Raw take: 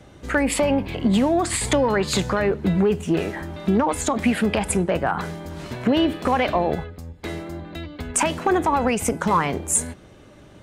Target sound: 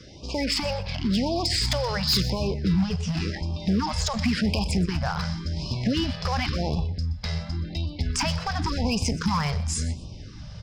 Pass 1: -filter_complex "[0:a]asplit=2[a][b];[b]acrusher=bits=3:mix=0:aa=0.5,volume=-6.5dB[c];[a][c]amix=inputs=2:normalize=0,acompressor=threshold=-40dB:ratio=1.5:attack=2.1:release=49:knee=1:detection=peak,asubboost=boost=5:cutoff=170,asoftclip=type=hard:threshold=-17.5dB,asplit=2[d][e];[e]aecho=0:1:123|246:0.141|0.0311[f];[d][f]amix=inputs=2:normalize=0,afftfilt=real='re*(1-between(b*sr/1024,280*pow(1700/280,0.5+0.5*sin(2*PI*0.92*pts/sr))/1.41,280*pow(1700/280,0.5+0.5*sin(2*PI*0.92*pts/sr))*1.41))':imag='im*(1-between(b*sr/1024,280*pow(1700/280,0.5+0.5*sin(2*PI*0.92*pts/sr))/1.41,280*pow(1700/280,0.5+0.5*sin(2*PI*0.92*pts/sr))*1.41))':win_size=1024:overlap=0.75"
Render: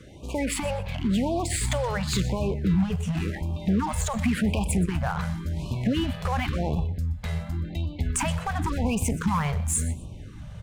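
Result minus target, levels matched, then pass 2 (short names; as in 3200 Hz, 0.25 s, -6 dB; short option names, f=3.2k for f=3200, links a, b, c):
4000 Hz band -8.0 dB
-filter_complex "[0:a]asplit=2[a][b];[b]acrusher=bits=3:mix=0:aa=0.5,volume=-6.5dB[c];[a][c]amix=inputs=2:normalize=0,acompressor=threshold=-40dB:ratio=1.5:attack=2.1:release=49:knee=1:detection=peak,lowpass=f=5.1k:t=q:w=12,asubboost=boost=5:cutoff=170,asoftclip=type=hard:threshold=-17.5dB,asplit=2[d][e];[e]aecho=0:1:123|246:0.141|0.0311[f];[d][f]amix=inputs=2:normalize=0,afftfilt=real='re*(1-between(b*sr/1024,280*pow(1700/280,0.5+0.5*sin(2*PI*0.92*pts/sr))/1.41,280*pow(1700/280,0.5+0.5*sin(2*PI*0.92*pts/sr))*1.41))':imag='im*(1-between(b*sr/1024,280*pow(1700/280,0.5+0.5*sin(2*PI*0.92*pts/sr))/1.41,280*pow(1700/280,0.5+0.5*sin(2*PI*0.92*pts/sr))*1.41))':win_size=1024:overlap=0.75"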